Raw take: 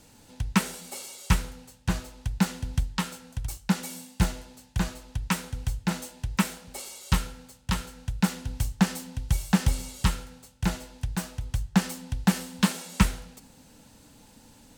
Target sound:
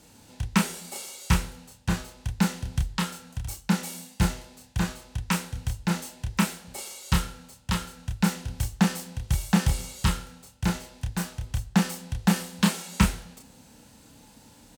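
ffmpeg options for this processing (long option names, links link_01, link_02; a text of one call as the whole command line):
ffmpeg -i in.wav -filter_complex "[0:a]highpass=40,asplit=2[link_01][link_02];[link_02]adelay=29,volume=-4dB[link_03];[link_01][link_03]amix=inputs=2:normalize=0" out.wav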